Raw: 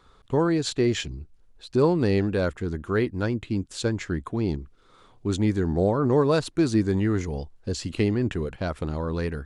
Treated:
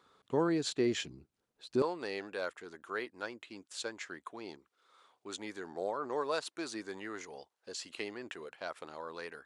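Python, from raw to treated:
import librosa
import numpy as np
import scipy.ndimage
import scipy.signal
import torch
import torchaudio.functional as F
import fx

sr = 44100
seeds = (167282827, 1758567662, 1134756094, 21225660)

y = fx.highpass(x, sr, hz=fx.steps((0.0, 200.0), (1.82, 650.0)), slope=12)
y = y * 10.0 ** (-7.0 / 20.0)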